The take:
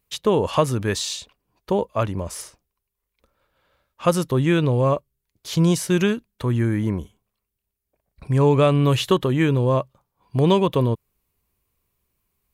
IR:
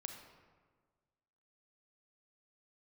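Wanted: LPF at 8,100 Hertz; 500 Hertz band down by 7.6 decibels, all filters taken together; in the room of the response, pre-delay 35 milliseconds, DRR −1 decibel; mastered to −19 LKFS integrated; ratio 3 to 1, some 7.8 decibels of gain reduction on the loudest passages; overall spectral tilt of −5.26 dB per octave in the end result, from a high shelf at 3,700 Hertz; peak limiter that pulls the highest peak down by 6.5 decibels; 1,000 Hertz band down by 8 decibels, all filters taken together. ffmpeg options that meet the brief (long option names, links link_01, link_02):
-filter_complex "[0:a]lowpass=8100,equalizer=frequency=500:width_type=o:gain=-8.5,equalizer=frequency=1000:width_type=o:gain=-7.5,highshelf=frequency=3700:gain=3.5,acompressor=threshold=-26dB:ratio=3,alimiter=limit=-21dB:level=0:latency=1,asplit=2[link_01][link_02];[1:a]atrim=start_sample=2205,adelay=35[link_03];[link_02][link_03]afir=irnorm=-1:irlink=0,volume=4dB[link_04];[link_01][link_04]amix=inputs=2:normalize=0,volume=9dB"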